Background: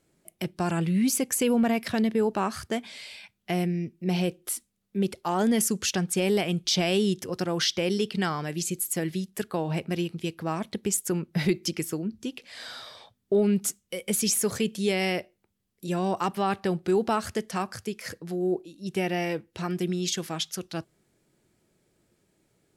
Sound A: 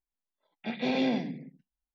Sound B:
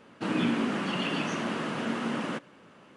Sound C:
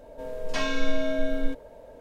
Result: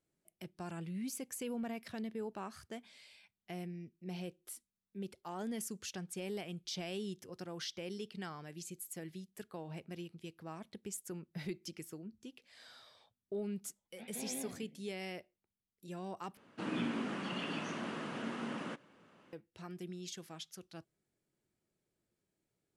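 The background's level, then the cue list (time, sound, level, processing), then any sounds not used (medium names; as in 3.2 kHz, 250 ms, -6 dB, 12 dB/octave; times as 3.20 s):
background -17 dB
13.33 s: add A -18 dB + vibrato 5.8 Hz 67 cents
16.37 s: replace with B -9.5 dB
not used: C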